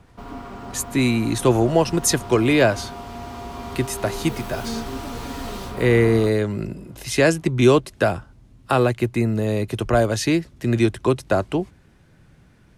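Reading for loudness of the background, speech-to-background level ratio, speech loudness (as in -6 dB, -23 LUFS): -34.0 LUFS, 13.5 dB, -20.5 LUFS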